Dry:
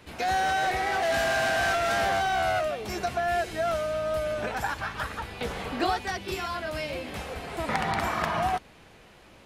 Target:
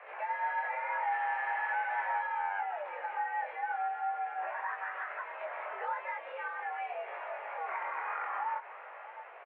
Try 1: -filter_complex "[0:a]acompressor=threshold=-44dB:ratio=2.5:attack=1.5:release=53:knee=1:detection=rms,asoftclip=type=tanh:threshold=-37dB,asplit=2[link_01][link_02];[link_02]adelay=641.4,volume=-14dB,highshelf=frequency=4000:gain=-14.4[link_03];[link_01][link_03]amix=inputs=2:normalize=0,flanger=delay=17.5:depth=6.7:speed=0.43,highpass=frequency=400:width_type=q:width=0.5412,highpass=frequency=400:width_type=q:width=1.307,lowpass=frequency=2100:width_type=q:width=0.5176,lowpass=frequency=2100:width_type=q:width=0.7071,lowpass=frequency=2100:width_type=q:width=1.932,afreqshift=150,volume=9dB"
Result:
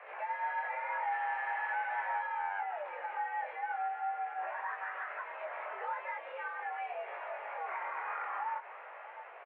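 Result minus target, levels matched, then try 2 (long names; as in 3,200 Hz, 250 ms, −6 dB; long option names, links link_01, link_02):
soft clipping: distortion +16 dB
-filter_complex "[0:a]acompressor=threshold=-44dB:ratio=2.5:attack=1.5:release=53:knee=1:detection=rms,asoftclip=type=tanh:threshold=-27.5dB,asplit=2[link_01][link_02];[link_02]adelay=641.4,volume=-14dB,highshelf=frequency=4000:gain=-14.4[link_03];[link_01][link_03]amix=inputs=2:normalize=0,flanger=delay=17.5:depth=6.7:speed=0.43,highpass=frequency=400:width_type=q:width=0.5412,highpass=frequency=400:width_type=q:width=1.307,lowpass=frequency=2100:width_type=q:width=0.5176,lowpass=frequency=2100:width_type=q:width=0.7071,lowpass=frequency=2100:width_type=q:width=1.932,afreqshift=150,volume=9dB"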